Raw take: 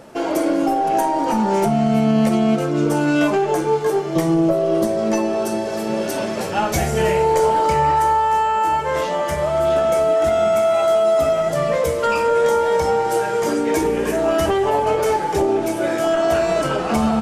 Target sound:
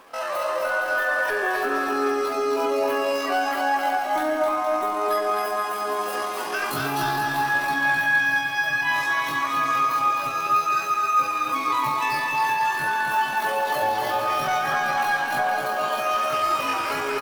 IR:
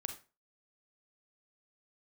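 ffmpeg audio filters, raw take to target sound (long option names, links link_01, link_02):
-filter_complex "[0:a]lowshelf=frequency=120:gain=-5.5,alimiter=limit=-11.5dB:level=0:latency=1:release=21,flanger=delay=6.9:depth=9.2:regen=-49:speed=0.53:shape=sinusoidal,asetrate=83250,aresample=44100,atempo=0.529732,asplit=2[link_01][link_02];[link_02]aecho=0:1:260|468|634.4|767.5|874:0.631|0.398|0.251|0.158|0.1[link_03];[link_01][link_03]amix=inputs=2:normalize=0,volume=-2dB"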